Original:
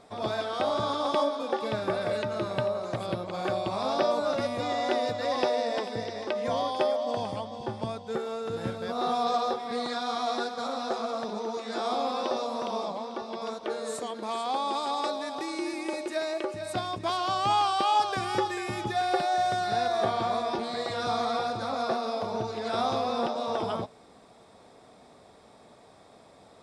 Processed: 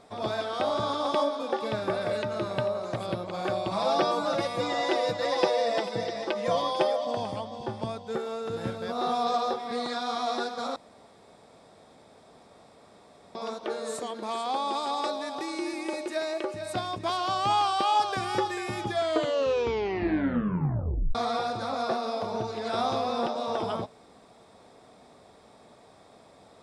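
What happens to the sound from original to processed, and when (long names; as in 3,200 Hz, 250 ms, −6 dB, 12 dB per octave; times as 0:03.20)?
0:03.71–0:07.07: comb filter 6 ms, depth 91%
0:10.76–0:13.35: fill with room tone
0:18.84: tape stop 2.31 s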